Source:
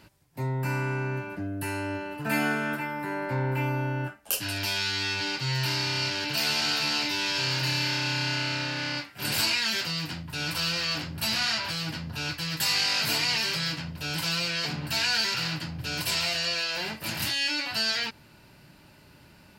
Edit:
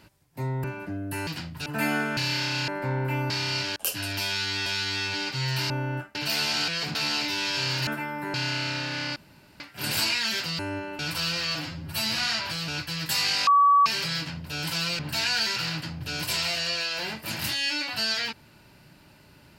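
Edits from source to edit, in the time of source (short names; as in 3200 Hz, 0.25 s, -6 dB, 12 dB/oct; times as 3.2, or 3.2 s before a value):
0.64–1.14 cut
1.77–2.17 swap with 10–10.39
2.68–3.15 swap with 7.68–8.19
3.77–4.22 swap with 5.77–6.23
4.73–5.12 loop, 2 plays
9.01 insert room tone 0.44 s
10.95–11.37 stretch 1.5×
11.87–12.19 cut
12.98–13.37 bleep 1140 Hz -14.5 dBFS
14.5–14.77 move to 6.76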